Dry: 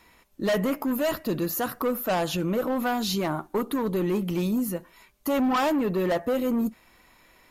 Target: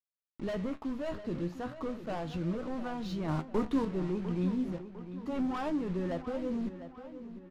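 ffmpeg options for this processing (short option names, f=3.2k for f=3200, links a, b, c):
-filter_complex "[0:a]acrusher=bits=5:mix=0:aa=0.000001,asettb=1/sr,asplit=3[a][b][c];[a]atrim=end=3.284[d];[b]atrim=start=3.28:end=3.85,asetpts=PTS-STARTPTS,afade=t=in:d=0.004:c=qsin,afade=t=out:st=0.566:d=0.004:c=qsin,acontrast=52[e];[c]atrim=start=3.846[f];[d][e]acrossfade=d=0.004:c1=hsin:c2=qsin[g];[g][f]acrossfade=d=0.004:c1=qsin:c2=hsin,aemphasis=mode=reproduction:type=bsi,adynamicsmooth=sensitivity=7:basefreq=4.9k,flanger=delay=9.7:depth=7.7:regen=63:speed=0.35:shape=triangular,asplit=2[h][i];[i]adelay=702,lowpass=f=4.9k:p=1,volume=-12dB,asplit=2[j][k];[k]adelay=702,lowpass=f=4.9k:p=1,volume=0.48,asplit=2[l][m];[m]adelay=702,lowpass=f=4.9k:p=1,volume=0.48,asplit=2[n][o];[o]adelay=702,lowpass=f=4.9k:p=1,volume=0.48,asplit=2[p][q];[q]adelay=702,lowpass=f=4.9k:p=1,volume=0.48[r];[j][l][n][p][r]amix=inputs=5:normalize=0[s];[h][s]amix=inputs=2:normalize=0,volume=-8.5dB"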